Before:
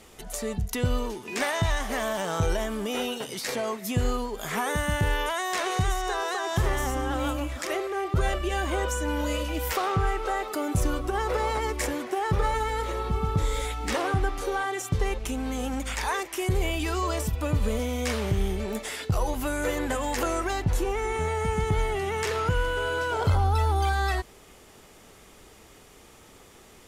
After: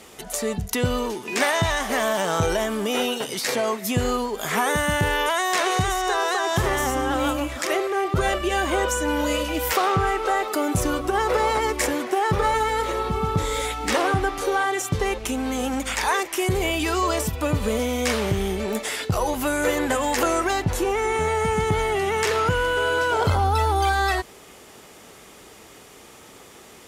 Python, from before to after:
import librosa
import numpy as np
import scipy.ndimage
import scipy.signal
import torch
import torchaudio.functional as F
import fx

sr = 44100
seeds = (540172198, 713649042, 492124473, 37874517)

y = fx.highpass(x, sr, hz=160.0, slope=6)
y = F.gain(torch.from_numpy(y), 6.5).numpy()